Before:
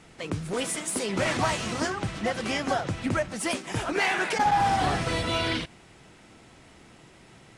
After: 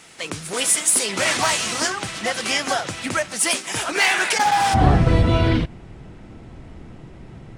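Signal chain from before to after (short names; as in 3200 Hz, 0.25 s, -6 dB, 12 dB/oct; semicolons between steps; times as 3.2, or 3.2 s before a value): tilt +3 dB/oct, from 4.73 s -3.5 dB/oct; gain +5 dB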